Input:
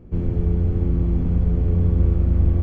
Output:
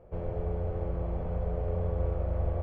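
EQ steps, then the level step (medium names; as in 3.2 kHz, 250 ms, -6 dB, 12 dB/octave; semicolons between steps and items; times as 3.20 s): low-pass 1.2 kHz 6 dB/octave; resonant low shelf 400 Hz -12.5 dB, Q 3; 0.0 dB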